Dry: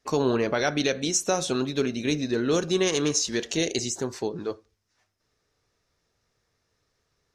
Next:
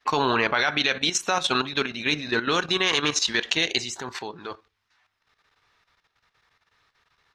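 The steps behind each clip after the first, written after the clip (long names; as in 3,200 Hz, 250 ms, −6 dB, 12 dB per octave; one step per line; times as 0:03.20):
flat-topped bell 1,800 Hz +14 dB 2.7 octaves
output level in coarse steps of 11 dB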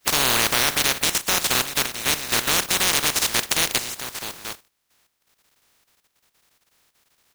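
compressing power law on the bin magnitudes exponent 0.14
level +3 dB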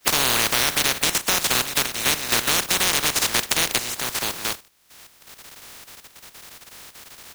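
multiband upward and downward compressor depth 70%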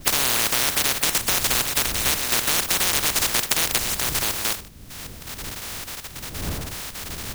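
wind on the microphone 89 Hz −29 dBFS
every bin compressed towards the loudest bin 2 to 1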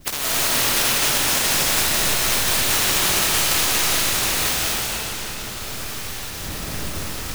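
comb and all-pass reverb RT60 4.4 s, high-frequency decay 0.95×, pre-delay 120 ms, DRR −8.5 dB
level −5.5 dB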